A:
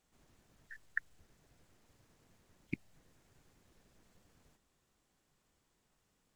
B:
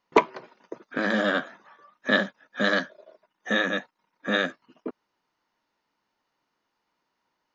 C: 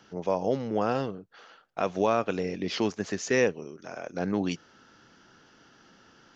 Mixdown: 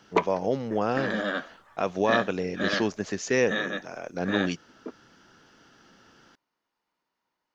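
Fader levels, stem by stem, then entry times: -1.0, -5.0, +0.5 dB; 0.00, 0.00, 0.00 s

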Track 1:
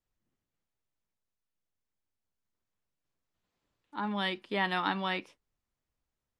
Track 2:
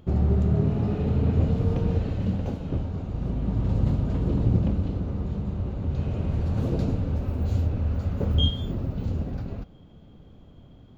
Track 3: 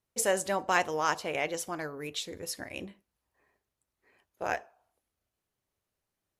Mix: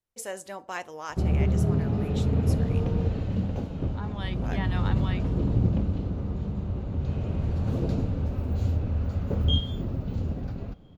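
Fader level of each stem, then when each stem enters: -6.5, -1.5, -8.5 dB; 0.00, 1.10, 0.00 s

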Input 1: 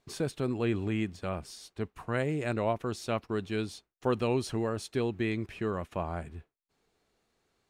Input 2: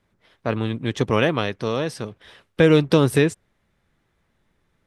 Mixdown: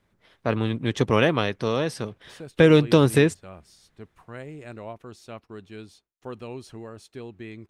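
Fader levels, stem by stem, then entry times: -8.5, -0.5 dB; 2.20, 0.00 s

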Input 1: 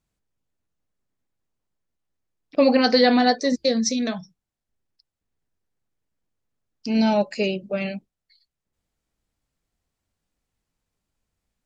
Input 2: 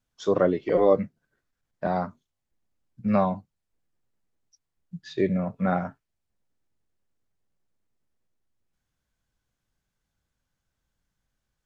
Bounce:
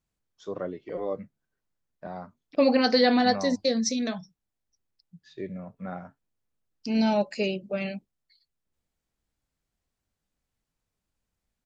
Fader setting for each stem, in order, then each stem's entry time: -4.0, -12.0 dB; 0.00, 0.20 s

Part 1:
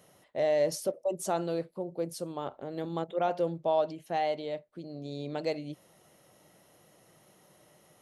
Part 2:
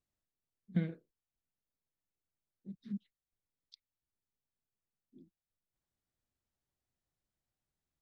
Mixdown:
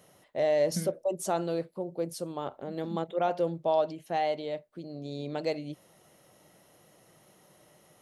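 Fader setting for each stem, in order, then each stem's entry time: +1.0, -1.5 dB; 0.00, 0.00 s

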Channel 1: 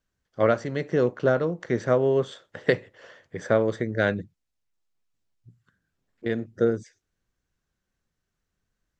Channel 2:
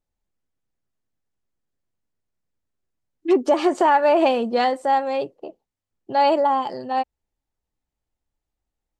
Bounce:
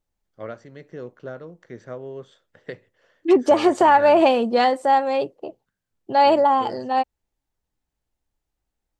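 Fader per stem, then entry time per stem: -13.5, +2.0 dB; 0.00, 0.00 s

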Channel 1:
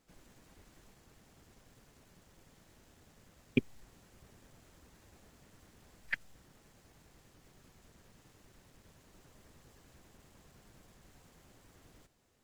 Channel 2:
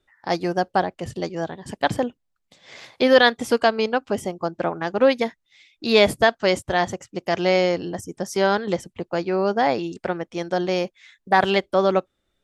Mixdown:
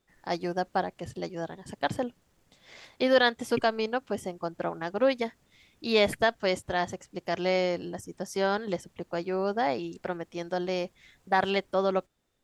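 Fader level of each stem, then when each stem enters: -5.5, -7.5 dB; 0.00, 0.00 s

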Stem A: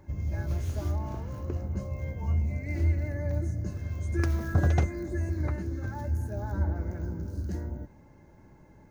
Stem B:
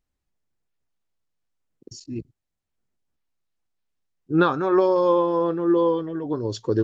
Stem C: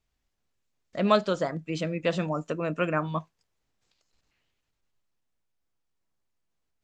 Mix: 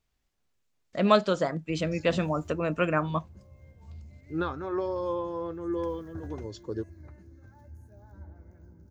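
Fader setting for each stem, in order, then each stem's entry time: -18.5, -12.0, +1.0 dB; 1.60, 0.00, 0.00 s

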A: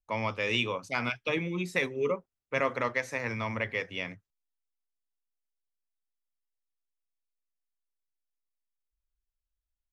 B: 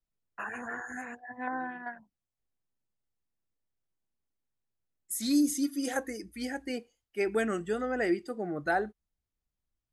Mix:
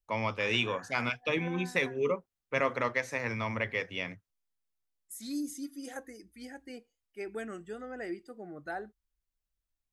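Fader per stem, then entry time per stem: -0.5, -10.0 dB; 0.00, 0.00 s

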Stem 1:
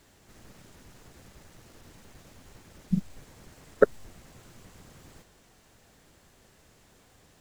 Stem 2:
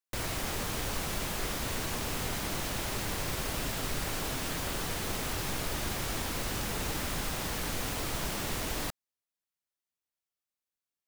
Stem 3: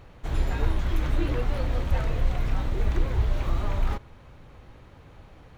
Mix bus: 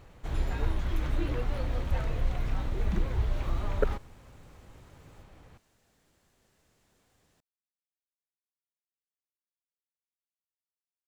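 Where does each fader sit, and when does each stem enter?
-10.0 dB, off, -4.5 dB; 0.00 s, off, 0.00 s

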